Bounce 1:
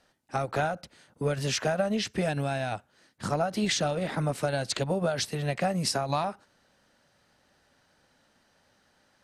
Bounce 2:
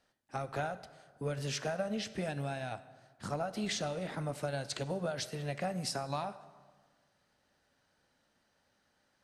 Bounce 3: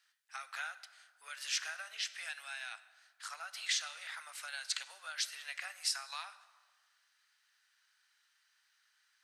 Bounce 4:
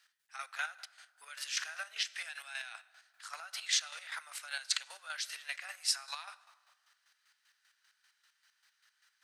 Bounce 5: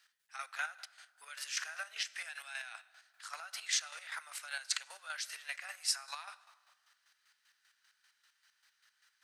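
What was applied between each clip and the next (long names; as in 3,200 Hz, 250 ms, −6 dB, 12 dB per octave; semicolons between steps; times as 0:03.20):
dense smooth reverb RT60 1.5 s, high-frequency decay 0.65×, DRR 12.5 dB; level −8.5 dB
high-pass filter 1,400 Hz 24 dB per octave; level +4 dB
square-wave tremolo 5.1 Hz, depth 60%, duty 35%; level +5 dB
dynamic equaliser 3,600 Hz, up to −5 dB, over −49 dBFS, Q 1.6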